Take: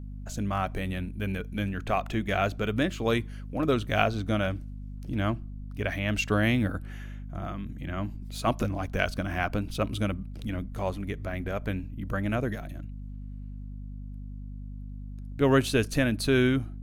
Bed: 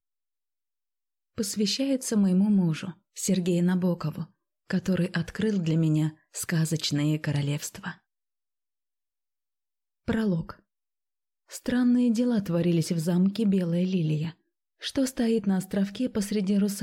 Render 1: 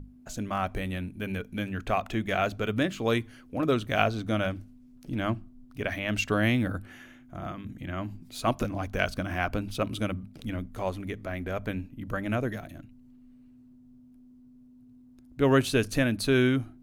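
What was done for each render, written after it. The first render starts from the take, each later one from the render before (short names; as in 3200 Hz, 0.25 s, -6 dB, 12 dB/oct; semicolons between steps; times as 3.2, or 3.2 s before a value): notches 50/100/150/200 Hz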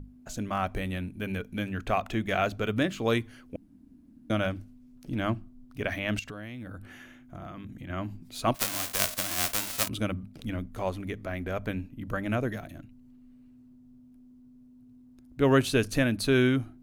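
3.56–4.3 room tone; 6.19–7.9 compressor 8:1, threshold -37 dBFS; 8.54–9.87 spectral whitening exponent 0.1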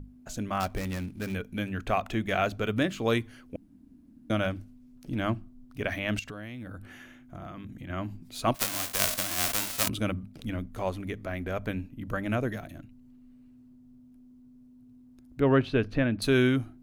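0.6–1.34 switching dead time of 0.13 ms; 8.92–10.19 sustainer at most 89 dB/s; 15.4–16.22 air absorption 330 m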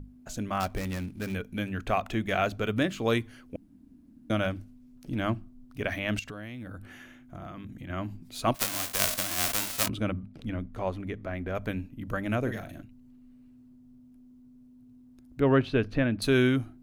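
9.86–11.55 LPF 2600 Hz 6 dB/oct; 12.41–12.83 doubler 41 ms -7.5 dB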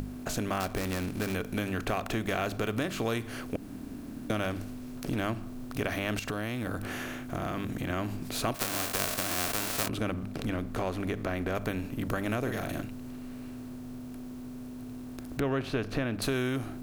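per-bin compression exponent 0.6; compressor 3:1, threshold -29 dBFS, peak gain reduction 10 dB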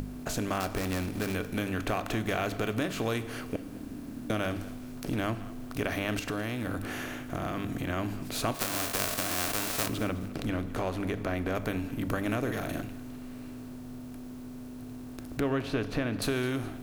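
thinning echo 0.211 s, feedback 36%, level -19 dB; FDN reverb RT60 1.3 s, high-frequency decay 0.85×, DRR 13 dB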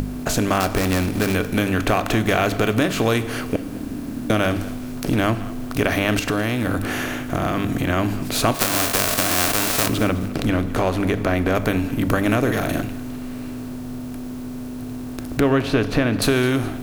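gain +11.5 dB; limiter -3 dBFS, peak gain reduction 2.5 dB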